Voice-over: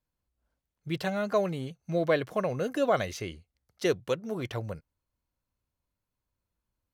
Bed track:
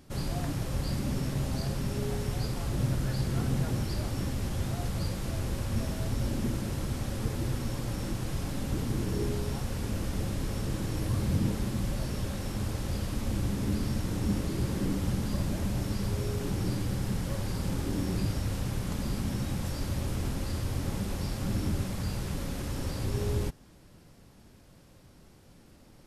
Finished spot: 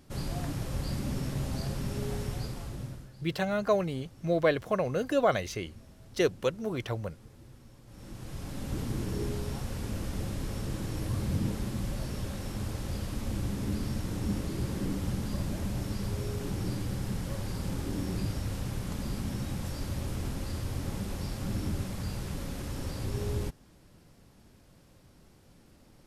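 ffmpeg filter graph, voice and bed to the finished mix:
-filter_complex "[0:a]adelay=2350,volume=0.5dB[a];[1:a]volume=16.5dB,afade=t=out:st=2.21:d=0.89:silence=0.112202,afade=t=in:st=7.86:d=0.93:silence=0.11885[b];[a][b]amix=inputs=2:normalize=0"

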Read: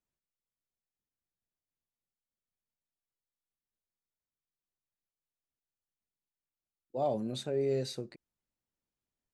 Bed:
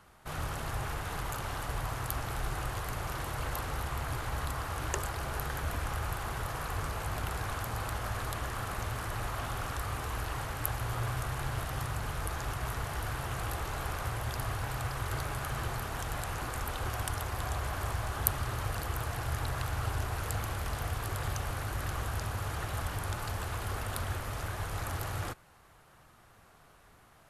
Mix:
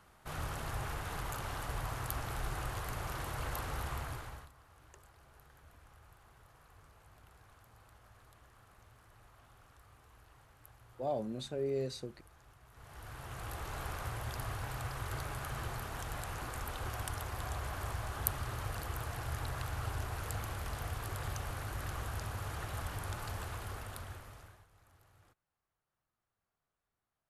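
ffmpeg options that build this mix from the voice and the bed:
-filter_complex "[0:a]adelay=4050,volume=-4dB[a];[1:a]volume=17dB,afade=t=out:st=3.92:d=0.58:silence=0.0794328,afade=t=in:st=12.71:d=1.07:silence=0.0944061,afade=t=out:st=23.39:d=1.27:silence=0.0562341[b];[a][b]amix=inputs=2:normalize=0"

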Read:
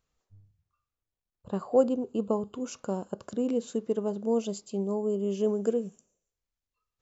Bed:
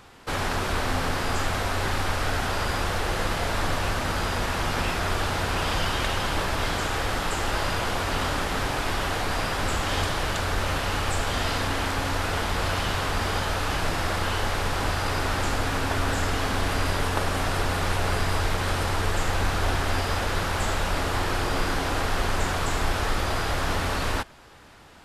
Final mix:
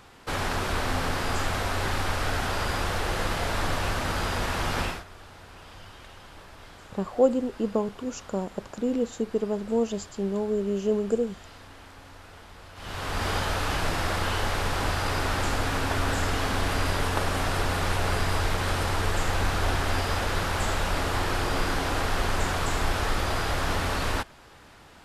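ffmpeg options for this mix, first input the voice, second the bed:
-filter_complex "[0:a]adelay=5450,volume=2dB[a];[1:a]volume=18.5dB,afade=t=out:st=4.82:d=0.22:silence=0.105925,afade=t=in:st=12.75:d=0.54:silence=0.1[b];[a][b]amix=inputs=2:normalize=0"

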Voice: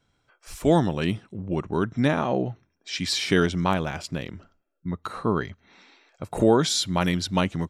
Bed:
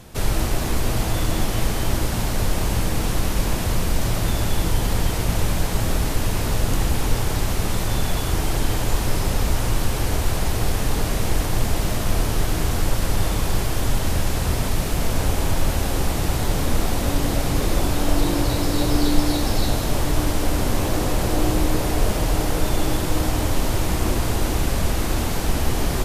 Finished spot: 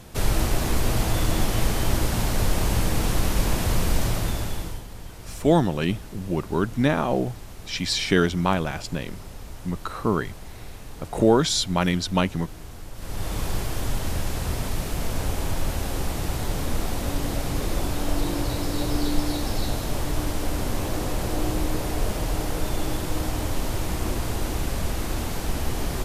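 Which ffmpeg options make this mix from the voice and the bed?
-filter_complex "[0:a]adelay=4800,volume=1dB[a];[1:a]volume=12dB,afade=t=out:st=3.95:d=0.9:silence=0.133352,afade=t=in:st=12.94:d=0.46:silence=0.223872[b];[a][b]amix=inputs=2:normalize=0"

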